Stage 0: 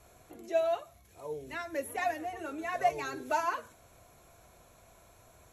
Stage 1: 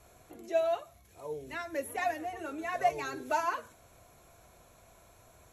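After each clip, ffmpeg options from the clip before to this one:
-af anull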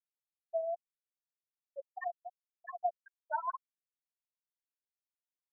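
-af "adynamicsmooth=sensitivity=7:basefreq=1k,bandpass=f=1.3k:t=q:w=0.86:csg=0,afftfilt=real='re*gte(hypot(re,im),0.126)':imag='im*gte(hypot(re,im),0.126)':win_size=1024:overlap=0.75,volume=-2dB"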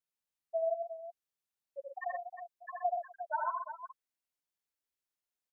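-af "aecho=1:1:78|124|357:0.668|0.447|0.316"

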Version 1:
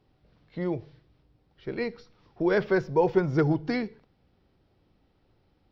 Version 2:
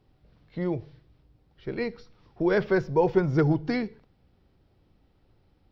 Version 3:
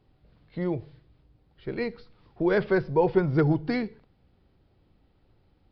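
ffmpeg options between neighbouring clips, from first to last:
-af "lowshelf=f=120:g=6"
-af "aresample=11025,aresample=44100"

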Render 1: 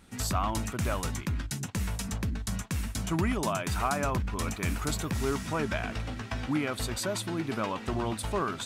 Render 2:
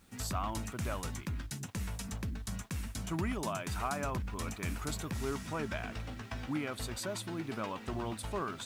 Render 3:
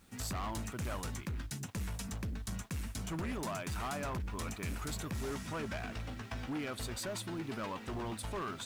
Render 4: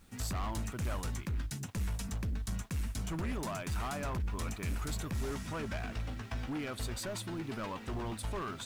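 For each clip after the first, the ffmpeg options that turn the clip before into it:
-af "acrusher=bits=9:mix=0:aa=0.000001,volume=-6.5dB"
-af "asoftclip=type=hard:threshold=-34.5dB"
-af "lowshelf=f=69:g=9"

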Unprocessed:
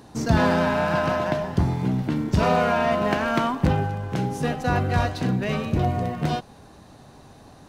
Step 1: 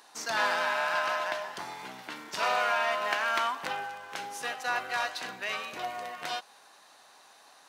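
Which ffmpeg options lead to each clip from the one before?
-af "highpass=1.1k"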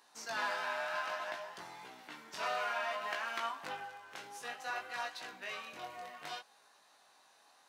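-af "flanger=delay=17:depth=5.9:speed=0.6,volume=-6dB"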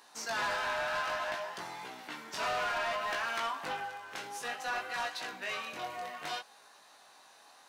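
-af "asoftclip=type=tanh:threshold=-35.5dB,volume=7dB"

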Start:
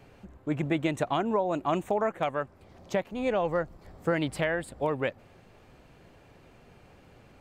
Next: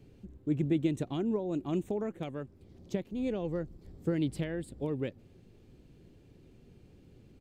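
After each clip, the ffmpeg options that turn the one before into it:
-af "firequalizer=gain_entry='entry(360,0);entry(630,-15);entry(1100,-18);entry(3500,-7)':delay=0.05:min_phase=1"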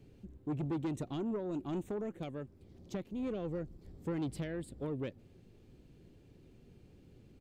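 -af "asoftclip=type=tanh:threshold=-29dB,volume=-2dB"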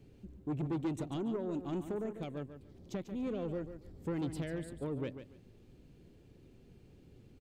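-af "aecho=1:1:143|286|429:0.316|0.0664|0.0139"

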